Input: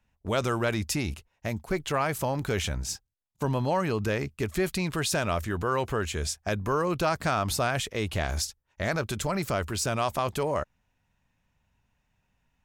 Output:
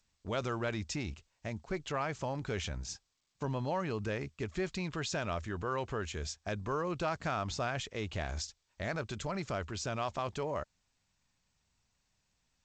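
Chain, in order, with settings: gain -8 dB; G.722 64 kbps 16000 Hz

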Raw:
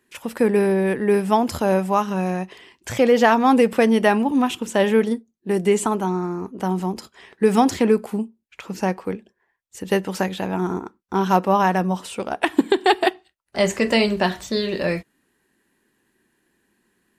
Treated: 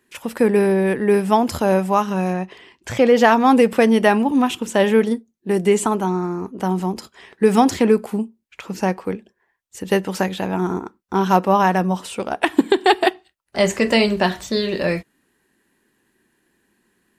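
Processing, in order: 2.32–3.16 high shelf 5200 Hz -> 9000 Hz -9 dB; gain +2 dB

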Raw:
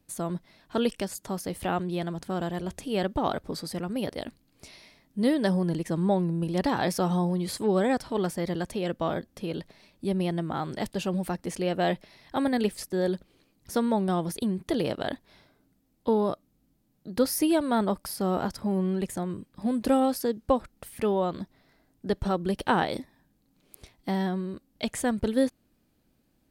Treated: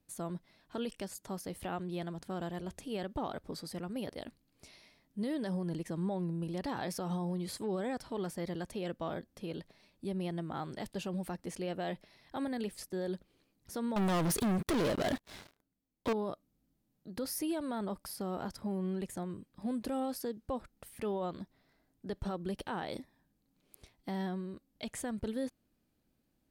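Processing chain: limiter -19.5 dBFS, peak gain reduction 9.5 dB; 13.96–16.13 sample leveller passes 5; gain -8 dB

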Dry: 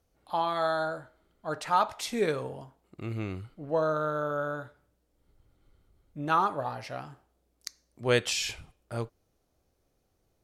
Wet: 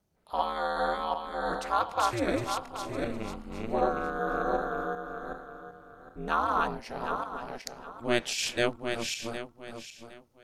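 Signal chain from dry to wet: regenerating reverse delay 0.381 s, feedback 49%, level 0 dB; ring modulator 120 Hz

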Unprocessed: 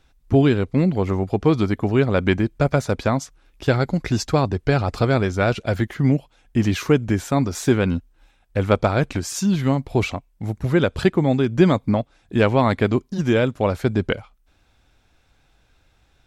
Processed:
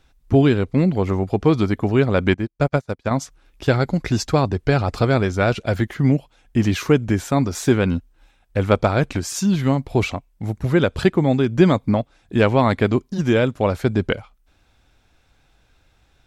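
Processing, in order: 2.34–3.11 upward expander 2.5:1, over -34 dBFS; gain +1 dB

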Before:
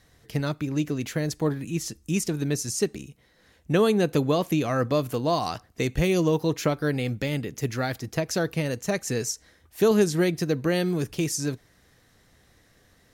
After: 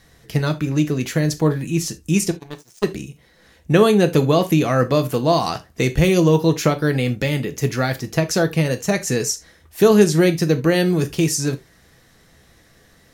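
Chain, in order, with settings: 2.31–2.84 power-law curve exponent 3; non-linear reverb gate 0.1 s falling, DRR 7.5 dB; gain +6.5 dB

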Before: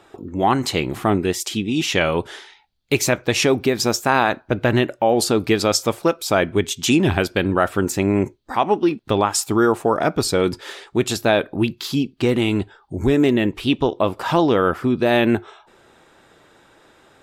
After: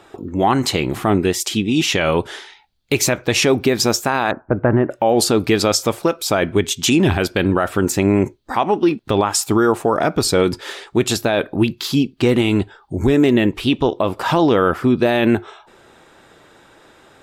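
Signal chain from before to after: 4.31–4.91 LPF 1500 Hz 24 dB/oct; limiter -9.5 dBFS, peak gain reduction 7 dB; gain +4 dB

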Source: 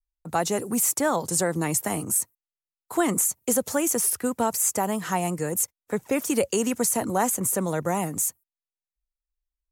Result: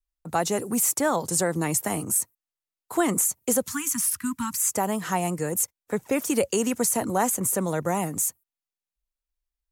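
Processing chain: 3.67–4.72 Chebyshev band-stop 280–990 Hz, order 4

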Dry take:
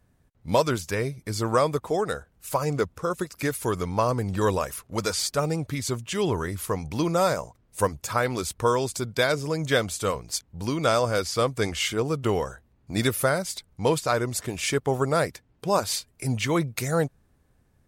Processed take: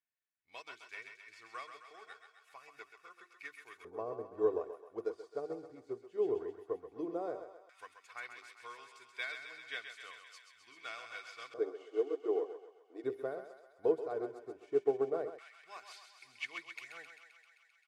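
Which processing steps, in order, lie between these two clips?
11.59–13.04 brick-wall FIR band-pass 250–11000 Hz; notches 50/100/150/200/250/300/350/400 Hz; comb 2.7 ms, depth 55%; thinning echo 0.131 s, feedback 79%, high-pass 530 Hz, level -5 dB; LFO band-pass square 0.13 Hz 450–2300 Hz; upward expander 1.5:1, over -45 dBFS; gain -5.5 dB

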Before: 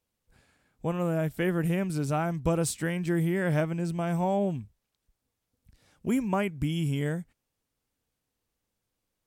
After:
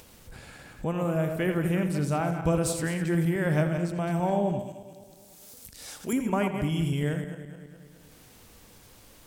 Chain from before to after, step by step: regenerating reverse delay 0.105 s, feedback 49%, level -7 dB; upward compressor, threshold -30 dBFS; 4.59–6.13 tone controls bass -11 dB, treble +12 dB; on a send: tape echo 83 ms, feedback 52%, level -11 dB, low-pass 4200 Hz

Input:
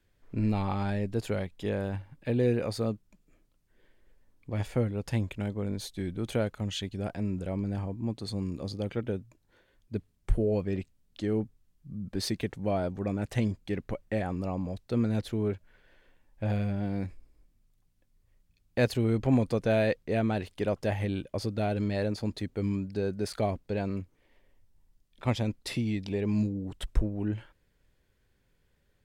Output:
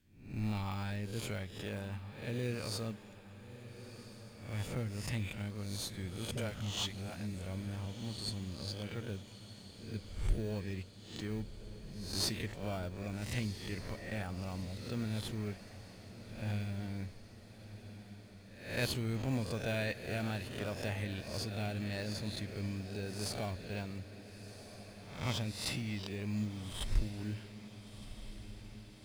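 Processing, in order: spectral swells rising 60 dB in 0.57 s; passive tone stack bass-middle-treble 5-5-5; in parallel at -9 dB: sample-rate reducer 2100 Hz, jitter 0%; 6.31–7.34 on the sum: dispersion highs, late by 64 ms, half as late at 320 Hz; diffused feedback echo 1.359 s, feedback 61%, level -13 dB; on a send at -15.5 dB: reverb, pre-delay 3 ms; on the sum: gain +4 dB

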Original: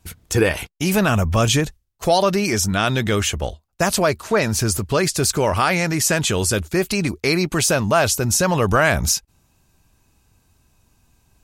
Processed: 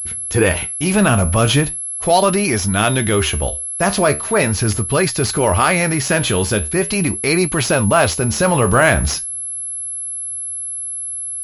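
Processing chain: flange 0.4 Hz, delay 7.4 ms, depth 9.2 ms, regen +69%; transient shaper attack -3 dB, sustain +1 dB; pulse-width modulation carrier 11000 Hz; gain +8 dB

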